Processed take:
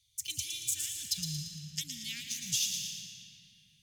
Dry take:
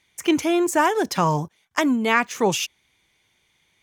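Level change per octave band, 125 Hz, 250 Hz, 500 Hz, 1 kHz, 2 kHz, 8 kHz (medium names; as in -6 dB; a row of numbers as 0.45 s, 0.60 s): -13.0 dB, -27.0 dB, under -40 dB, under -40 dB, -21.5 dB, -0.5 dB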